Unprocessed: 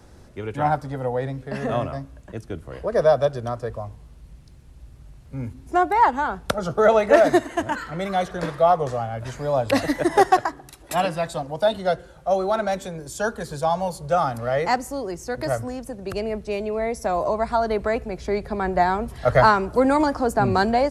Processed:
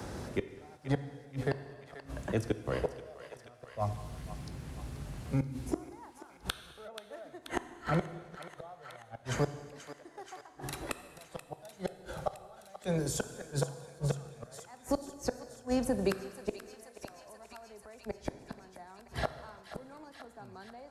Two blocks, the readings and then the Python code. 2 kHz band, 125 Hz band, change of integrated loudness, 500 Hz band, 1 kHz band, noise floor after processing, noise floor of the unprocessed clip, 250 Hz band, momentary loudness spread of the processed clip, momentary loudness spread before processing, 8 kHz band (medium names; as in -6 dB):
-17.0 dB, -7.5 dB, -15.5 dB, -17.5 dB, -22.5 dB, -57 dBFS, -47 dBFS, -12.0 dB, 16 LU, 13 LU, -6.5 dB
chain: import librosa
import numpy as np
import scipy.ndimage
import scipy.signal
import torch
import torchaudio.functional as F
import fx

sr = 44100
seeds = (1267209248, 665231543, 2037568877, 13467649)

y = scipy.signal.sosfilt(scipy.signal.butter(2, 63.0, 'highpass', fs=sr, output='sos'), x)
y = fx.gate_flip(y, sr, shuts_db=-21.0, range_db=-42)
y = fx.echo_thinned(y, sr, ms=482, feedback_pct=71, hz=960.0, wet_db=-15.0)
y = fx.rev_gated(y, sr, seeds[0], gate_ms=390, shape='falling', drr_db=10.5)
y = fx.band_squash(y, sr, depth_pct=40)
y = y * 10.0 ** (4.0 / 20.0)